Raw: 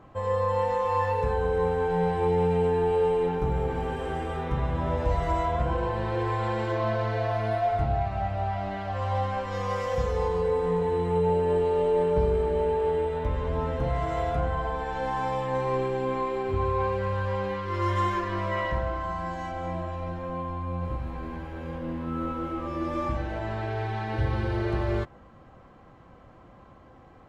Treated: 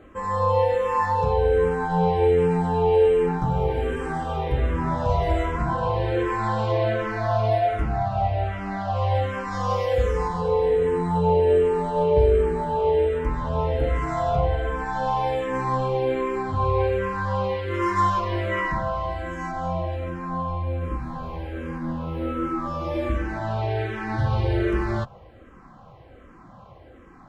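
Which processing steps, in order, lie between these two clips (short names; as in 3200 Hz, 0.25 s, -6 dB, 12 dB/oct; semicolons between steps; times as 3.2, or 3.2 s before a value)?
endless phaser -1.3 Hz; gain +7 dB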